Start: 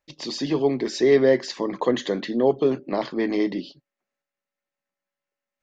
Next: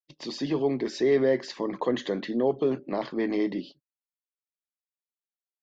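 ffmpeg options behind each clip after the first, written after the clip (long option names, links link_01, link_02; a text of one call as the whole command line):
ffmpeg -i in.wav -filter_complex "[0:a]agate=range=-33dB:threshold=-37dB:ratio=3:detection=peak,lowpass=frequency=3900:poles=1,asplit=2[link_01][link_02];[link_02]alimiter=limit=-16dB:level=0:latency=1,volume=-2dB[link_03];[link_01][link_03]amix=inputs=2:normalize=0,volume=-8dB" out.wav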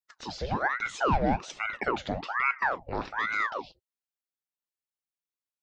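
ffmpeg -i in.wav -af "aeval=exprs='val(0)*sin(2*PI*1000*n/s+1000*0.8/1.2*sin(2*PI*1.2*n/s))':channel_layout=same" out.wav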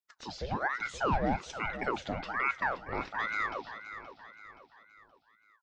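ffmpeg -i in.wav -af "aecho=1:1:524|1048|1572|2096:0.266|0.117|0.0515|0.0227,volume=-4dB" out.wav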